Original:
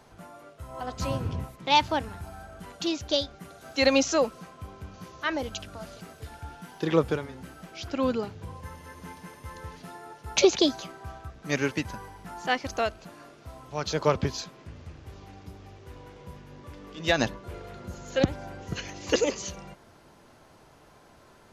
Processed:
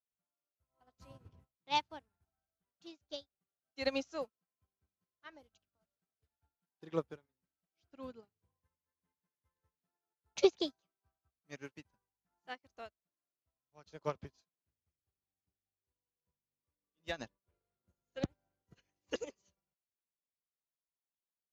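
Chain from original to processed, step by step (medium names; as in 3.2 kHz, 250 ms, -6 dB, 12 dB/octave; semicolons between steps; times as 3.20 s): upward expansion 2.5:1, over -46 dBFS; trim -6 dB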